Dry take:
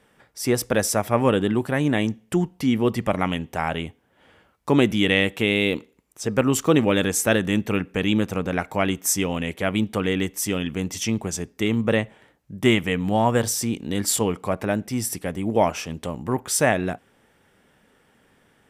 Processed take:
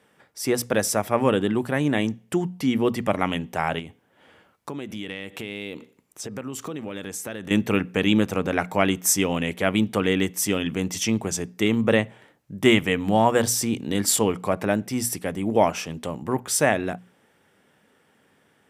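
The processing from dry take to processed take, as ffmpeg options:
-filter_complex "[0:a]asettb=1/sr,asplit=3[s0][s1][s2];[s0]atrim=end=3.794[s3];[s1]atrim=start=3.79:end=7.51,asetpts=PTS-STARTPTS,afade=t=in:d=0.004:c=qsin,afade=t=out:st=3.716:d=0.004:c=qsin,acompressor=threshold=0.0251:ratio=6:attack=3.2:release=140:knee=1:detection=peak[s4];[s2]atrim=start=7.506[s5];[s3][s4]acrossfade=d=0.004:c1=hsin:c2=qsin[s6];[s6][s5]acrossfade=d=0.004:c1=qsin:c2=hsin,bandreject=f=60:t=h:w=6,bandreject=f=120:t=h:w=6,bandreject=f=180:t=h:w=6,bandreject=f=240:t=h:w=6,dynaudnorm=f=580:g=13:m=1.78,highpass=100,volume=0.891"

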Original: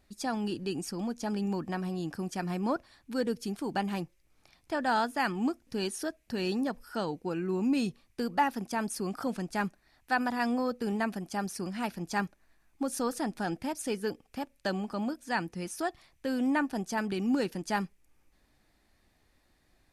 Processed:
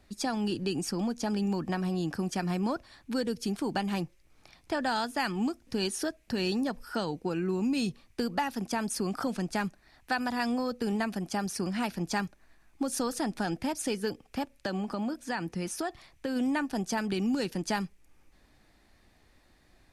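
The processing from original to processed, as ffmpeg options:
-filter_complex "[0:a]asplit=3[s0][s1][s2];[s0]afade=t=out:st=14.54:d=0.02[s3];[s1]acompressor=threshold=0.02:ratio=3:attack=3.2:release=140:knee=1:detection=peak,afade=t=in:st=14.54:d=0.02,afade=t=out:st=16.35:d=0.02[s4];[s2]afade=t=in:st=16.35:d=0.02[s5];[s3][s4][s5]amix=inputs=3:normalize=0,highshelf=f=11000:g=-8,acrossover=split=130|3000[s6][s7][s8];[s7]acompressor=threshold=0.0178:ratio=4[s9];[s6][s9][s8]amix=inputs=3:normalize=0,volume=2"

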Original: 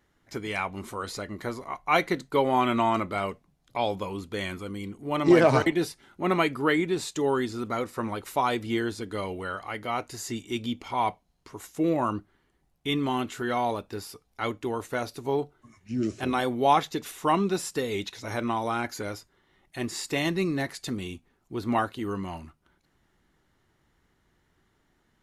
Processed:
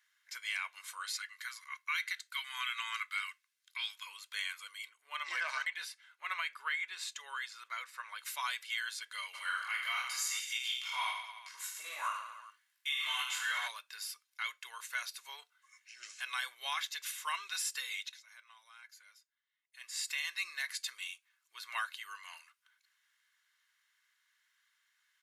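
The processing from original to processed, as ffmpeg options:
-filter_complex "[0:a]asettb=1/sr,asplit=3[s0][s1][s2];[s0]atrim=end=1.144[s3];[s1]atrim=start=1.14:end=4.07,asetpts=PTS-STARTPTS,afade=t=in:d=0.004:c=qsin,afade=t=out:st=2.926:d=0.004:c=qsin,highpass=f=1200:w=0.5412,highpass=f=1200:w=1.3066[s4];[s2]atrim=start=4.066[s5];[s3][s4]acrossfade=d=0.004:c1=hsin:c2=qsin[s6];[s6][s5]acrossfade=d=0.004:c1=qsin:c2=hsin,asettb=1/sr,asplit=3[s7][s8][s9];[s7]atrim=end=4.894[s10];[s8]atrim=start=4.89:end=8.19,asetpts=PTS-STARTPTS,afade=t=in:d=0.004:c=qsin,afade=t=out:st=3.296:d=0.004:c=qsin,highshelf=f=3700:g=-9.5[s11];[s9]atrim=start=8.186[s12];[s10][s11]acrossfade=d=0.004:c1=hsin:c2=qsin[s13];[s13][s12]acrossfade=d=0.004:c1=qsin:c2=hsin,asplit=3[s14][s15][s16];[s14]afade=t=out:st=9.33:d=0.02[s17];[s15]aecho=1:1:20|45|76.25|115.3|164.1|225.2|301.5|396.8:0.794|0.631|0.501|0.398|0.316|0.251|0.2|0.158,afade=t=in:st=9.33:d=0.02,afade=t=out:st=13.67:d=0.02[s18];[s16]afade=t=in:st=13.67:d=0.02[s19];[s17][s18][s19]amix=inputs=3:normalize=0,asplit=3[s20][s21][s22];[s20]atrim=end=18.26,asetpts=PTS-STARTPTS,afade=t=out:st=17.81:d=0.45:silence=0.112202[s23];[s21]atrim=start=18.26:end=19.72,asetpts=PTS-STARTPTS,volume=0.112[s24];[s22]atrim=start=19.72,asetpts=PTS-STARTPTS,afade=t=in:d=0.45:silence=0.112202[s25];[s23][s24][s25]concat=n=3:v=0:a=1,highpass=f=1500:w=0.5412,highpass=f=1500:w=1.3066,aecho=1:1:1.9:0.39,alimiter=level_in=1.12:limit=0.0631:level=0:latency=1:release=96,volume=0.891"

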